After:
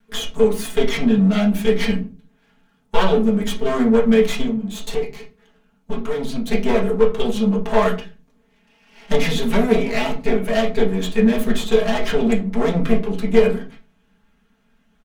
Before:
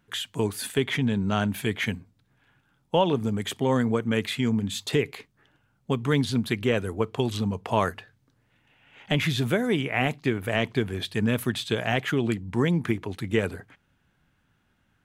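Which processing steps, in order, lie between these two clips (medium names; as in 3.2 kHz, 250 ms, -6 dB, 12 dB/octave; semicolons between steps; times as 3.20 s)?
comb filter that takes the minimum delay 4.8 ms; comb 4.5 ms, depth 56%; 4.42–6.46 s: compression 6:1, threshold -30 dBFS, peak gain reduction 12.5 dB; reverberation RT60 0.35 s, pre-delay 4 ms, DRR -1 dB; trim +2 dB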